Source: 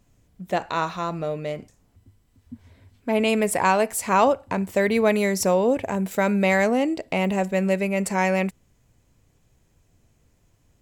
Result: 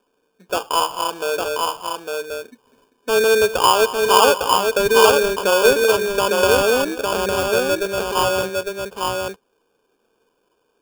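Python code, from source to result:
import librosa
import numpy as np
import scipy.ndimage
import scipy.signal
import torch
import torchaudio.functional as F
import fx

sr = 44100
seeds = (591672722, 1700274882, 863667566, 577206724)

y = fx.cabinet(x, sr, low_hz=300.0, low_slope=24, high_hz=2600.0, hz=(310.0, 450.0, 670.0, 1000.0, 1600.0, 2400.0), db=(-4, 9, -5, 7, -8, -9))
y = fx.sample_hold(y, sr, seeds[0], rate_hz=2000.0, jitter_pct=0)
y = fx.echo_multitap(y, sr, ms=(203, 855), db=(-16.0, -3.5))
y = y * librosa.db_to_amplitude(2.5)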